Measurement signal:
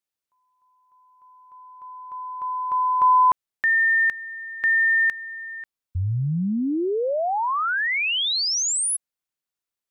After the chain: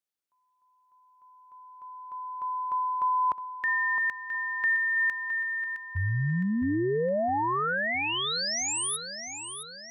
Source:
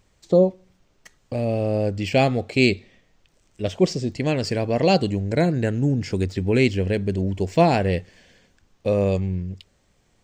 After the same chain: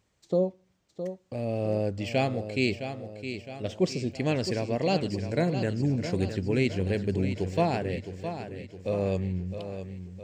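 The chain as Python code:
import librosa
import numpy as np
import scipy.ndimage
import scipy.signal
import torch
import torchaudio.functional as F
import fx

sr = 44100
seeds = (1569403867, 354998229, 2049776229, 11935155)

y = scipy.signal.sosfilt(scipy.signal.butter(2, 68.0, 'highpass', fs=sr, output='sos'), x)
y = fx.rider(y, sr, range_db=3, speed_s=0.5)
y = fx.echo_feedback(y, sr, ms=663, feedback_pct=51, wet_db=-9.5)
y = y * librosa.db_to_amplitude(-6.5)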